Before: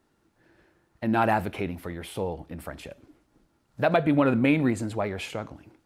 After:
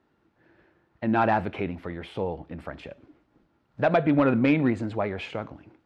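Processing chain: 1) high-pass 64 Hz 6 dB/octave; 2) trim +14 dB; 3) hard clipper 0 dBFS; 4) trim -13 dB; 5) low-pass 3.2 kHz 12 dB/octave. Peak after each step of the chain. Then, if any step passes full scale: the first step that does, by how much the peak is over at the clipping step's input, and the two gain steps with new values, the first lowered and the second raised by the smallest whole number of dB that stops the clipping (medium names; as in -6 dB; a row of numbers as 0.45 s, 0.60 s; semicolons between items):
-8.5 dBFS, +5.5 dBFS, 0.0 dBFS, -13.0 dBFS, -12.5 dBFS; step 2, 5.5 dB; step 2 +8 dB, step 4 -7 dB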